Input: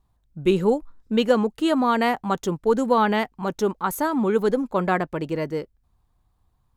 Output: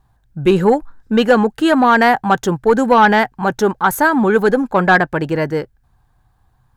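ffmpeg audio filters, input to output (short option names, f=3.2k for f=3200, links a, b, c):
-af "equalizer=f=125:t=o:w=0.33:g=8,equalizer=f=800:t=o:w=0.33:g=7,equalizer=f=1.6k:t=o:w=0.33:g=12,asoftclip=type=tanh:threshold=-9.5dB,volume=7.5dB"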